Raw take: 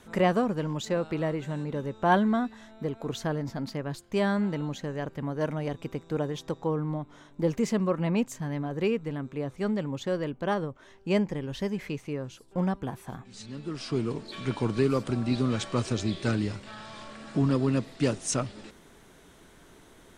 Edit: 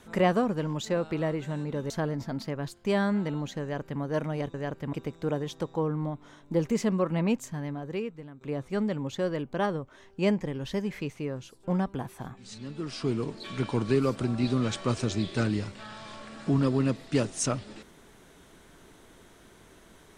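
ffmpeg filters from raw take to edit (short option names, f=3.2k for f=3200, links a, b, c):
-filter_complex "[0:a]asplit=5[a][b][c][d][e];[a]atrim=end=1.902[f];[b]atrim=start=3.168:end=5.812[g];[c]atrim=start=4.888:end=5.282[h];[d]atrim=start=5.808:end=9.29,asetpts=PTS-STARTPTS,afade=t=out:st=2.412:d=1.07:silence=0.16788[i];[e]atrim=start=9.29,asetpts=PTS-STARTPTS,afade=t=in:d=0.004:c=hsin:silence=0.16788[j];[f][g]acrossfade=d=0.004:c1=hsin:c2=hsin[k];[k][h]acrossfade=d=0.004:c1=hsin:c2=hsin[l];[i][j]concat=n=2:v=0:a=1[m];[l][m]acrossfade=d=0.004:c1=hsin:c2=hsin"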